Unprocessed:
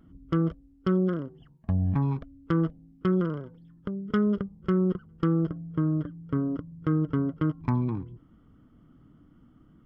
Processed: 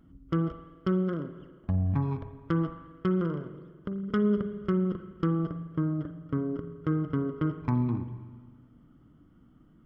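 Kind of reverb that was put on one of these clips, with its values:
spring reverb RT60 1.5 s, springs 41/53 ms, chirp 80 ms, DRR 8.5 dB
level −2 dB

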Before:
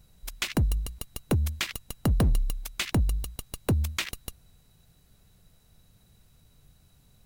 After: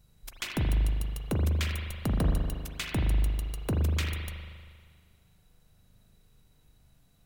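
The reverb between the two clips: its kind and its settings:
spring reverb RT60 1.8 s, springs 39 ms, chirp 65 ms, DRR 0 dB
level −5.5 dB

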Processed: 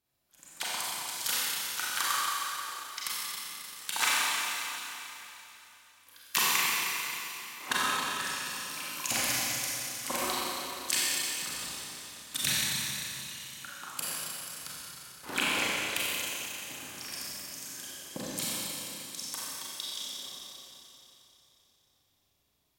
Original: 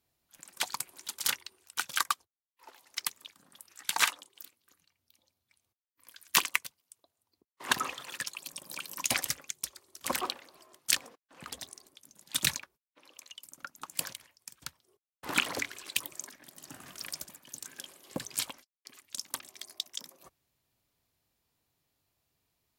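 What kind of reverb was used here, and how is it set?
four-comb reverb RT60 3.3 s, combs from 30 ms, DRR −8 dB
level −5 dB

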